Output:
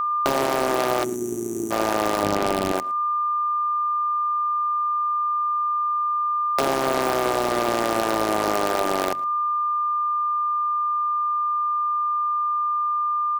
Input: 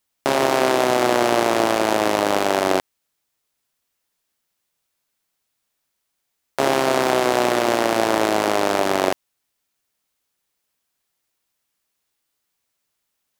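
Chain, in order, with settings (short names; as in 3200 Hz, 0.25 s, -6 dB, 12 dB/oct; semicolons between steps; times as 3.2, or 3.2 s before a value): notches 50/100/150/200/250/300 Hz; whine 1200 Hz -25 dBFS; 2.23–2.72 tone controls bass +15 dB, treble -8 dB; compressor 10:1, threshold -20 dBFS, peak gain reduction 11 dB; 1.04–1.71 spectral gain 450–5700 Hz -28 dB; in parallel at -4 dB: wrapped overs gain 14 dB; on the sum: outdoor echo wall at 19 m, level -21 dB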